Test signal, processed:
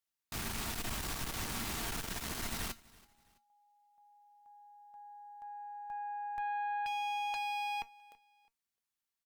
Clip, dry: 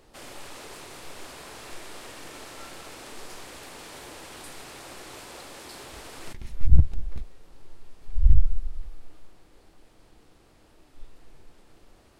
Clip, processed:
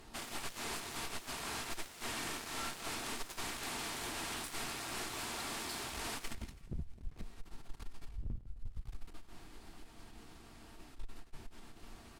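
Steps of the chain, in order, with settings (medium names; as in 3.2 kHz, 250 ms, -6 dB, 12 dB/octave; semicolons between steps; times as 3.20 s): peaking EQ 510 Hz -13 dB 0.39 oct; compression 10:1, threshold -30 dBFS; wavefolder -33 dBFS; feedback comb 230 Hz, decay 0.16 s, harmonics all, mix 60%; Chebyshev shaper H 3 -22 dB, 4 -13 dB, 5 -16 dB, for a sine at -33.5 dBFS; feedback delay 330 ms, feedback 36%, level -23 dB; trim +5 dB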